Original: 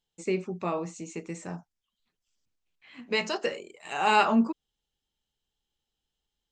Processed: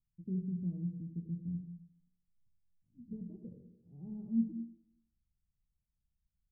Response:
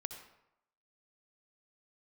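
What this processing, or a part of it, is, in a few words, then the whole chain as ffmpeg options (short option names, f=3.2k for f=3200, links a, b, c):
club heard from the street: -filter_complex "[0:a]alimiter=limit=-14dB:level=0:latency=1:release=466,lowpass=f=170:w=0.5412,lowpass=f=170:w=1.3066[a];[1:a]atrim=start_sample=2205[b];[a][b]afir=irnorm=-1:irlink=0,volume=7.5dB"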